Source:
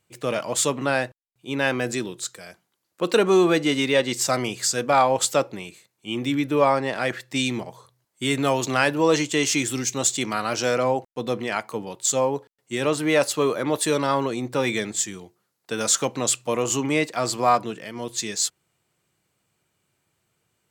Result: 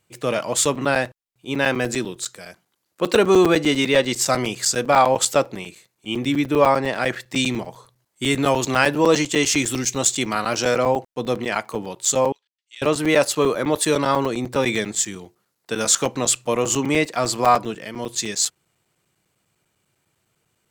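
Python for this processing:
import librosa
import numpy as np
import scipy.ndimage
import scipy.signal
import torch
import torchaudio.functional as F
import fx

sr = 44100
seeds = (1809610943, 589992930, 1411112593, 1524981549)

y = fx.ladder_bandpass(x, sr, hz=3800.0, resonance_pct=35, at=(12.32, 12.82))
y = fx.buffer_crackle(y, sr, first_s=0.65, period_s=0.1, block=256, kind='zero')
y = y * librosa.db_to_amplitude(3.0)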